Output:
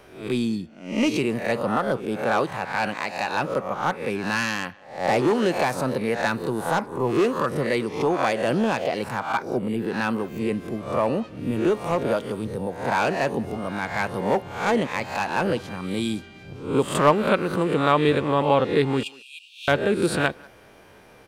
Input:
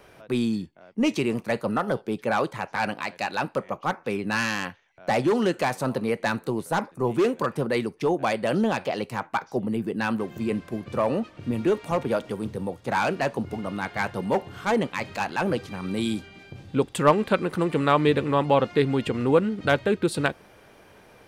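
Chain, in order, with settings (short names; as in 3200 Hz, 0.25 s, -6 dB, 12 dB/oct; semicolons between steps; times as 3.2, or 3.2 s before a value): spectral swells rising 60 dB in 0.50 s; 19.03–19.68 Chebyshev high-pass 2400 Hz, order 10; speakerphone echo 0.19 s, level -23 dB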